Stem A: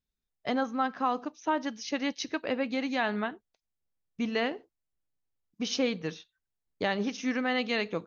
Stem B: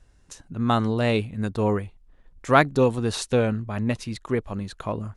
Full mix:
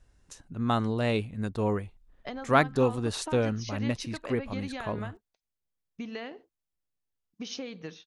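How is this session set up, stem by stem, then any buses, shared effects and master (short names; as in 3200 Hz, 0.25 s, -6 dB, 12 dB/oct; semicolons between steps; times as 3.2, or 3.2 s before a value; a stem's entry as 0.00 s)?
-2.5 dB, 1.80 s, no send, compressor 12:1, threshold -32 dBFS, peak gain reduction 10 dB
-5.0 dB, 0.00 s, no send, dry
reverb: off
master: dry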